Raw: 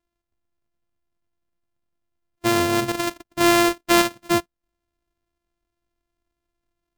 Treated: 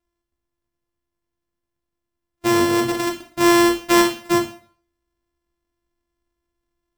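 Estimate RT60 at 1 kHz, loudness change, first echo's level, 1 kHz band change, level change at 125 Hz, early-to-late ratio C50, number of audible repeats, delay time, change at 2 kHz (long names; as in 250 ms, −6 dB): 0.45 s, +2.0 dB, no echo audible, +1.5 dB, −0.5 dB, 9.0 dB, no echo audible, no echo audible, +1.0 dB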